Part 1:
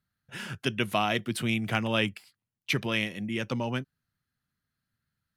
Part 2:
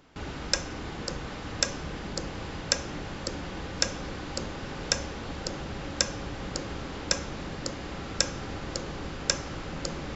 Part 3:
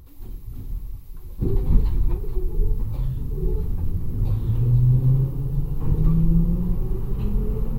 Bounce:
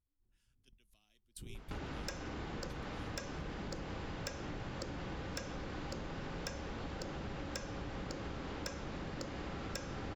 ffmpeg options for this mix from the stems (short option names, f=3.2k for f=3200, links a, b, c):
-filter_complex "[0:a]bass=f=250:g=-13,treble=f=4k:g=9,acrossover=split=310|3000[a][b][c];[b]acompressor=threshold=-55dB:ratio=2[d];[a][d][c]amix=inputs=3:normalize=0,adynamicequalizer=threshold=0.00631:dfrequency=3400:dqfactor=0.7:tfrequency=3400:tqfactor=0.7:attack=5:release=100:ratio=0.375:range=3:mode=boostabove:tftype=highshelf,volume=-14.5dB[e];[1:a]asoftclip=type=tanh:threshold=-18dB,adelay=1550,volume=1dB[f];[2:a]alimiter=limit=-14dB:level=0:latency=1:release=243,volume=-17.5dB[g];[e][g]amix=inputs=2:normalize=0,agate=range=-25dB:threshold=-39dB:ratio=16:detection=peak,acompressor=threshold=-48dB:ratio=2,volume=0dB[h];[f][h]amix=inputs=2:normalize=0,highshelf=f=4.5k:g=-8,acompressor=threshold=-40dB:ratio=5"